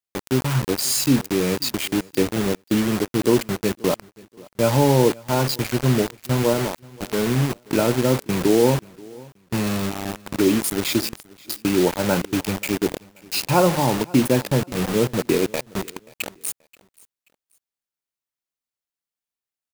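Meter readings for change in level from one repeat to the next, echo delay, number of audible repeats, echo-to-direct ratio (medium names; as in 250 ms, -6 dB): -10.5 dB, 531 ms, 2, -23.0 dB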